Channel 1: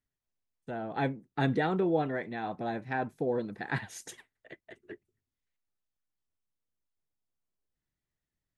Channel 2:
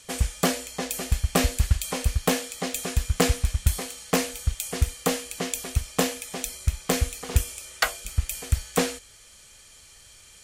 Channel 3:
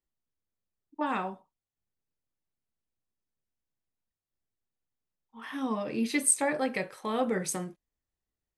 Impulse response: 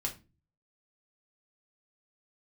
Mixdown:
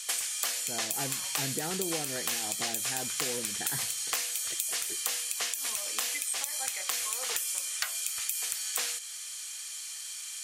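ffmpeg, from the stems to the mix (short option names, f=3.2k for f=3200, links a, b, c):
-filter_complex "[0:a]volume=-1.5dB,asplit=3[a][b][c];[b]volume=-16.5dB[d];[1:a]highshelf=f=2.8k:g=10,volume=3dB[e];[2:a]aphaser=in_gain=1:out_gain=1:delay=2.3:decay=0.5:speed=0.34:type=triangular,volume=-4.5dB[f];[c]apad=whole_len=378103[g];[f][g]sidechaincompress=threshold=-33dB:ratio=8:attack=16:release=659[h];[e][h]amix=inputs=2:normalize=0,highpass=1k,alimiter=limit=-7.5dB:level=0:latency=1:release=153,volume=0dB[i];[3:a]atrim=start_sample=2205[j];[d][j]afir=irnorm=-1:irlink=0[k];[a][i][k]amix=inputs=3:normalize=0,acompressor=threshold=-29dB:ratio=6"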